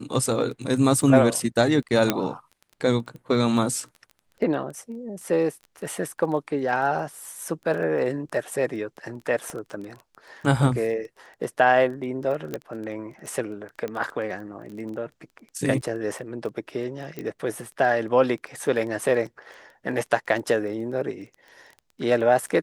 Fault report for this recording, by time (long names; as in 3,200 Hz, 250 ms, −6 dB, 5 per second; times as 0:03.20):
surface crackle 18 per second −33 dBFS
0:02.10: click −5 dBFS
0:09.50: click −20 dBFS
0:12.54: click −15 dBFS
0:13.88: click −19 dBFS
0:17.19: click −19 dBFS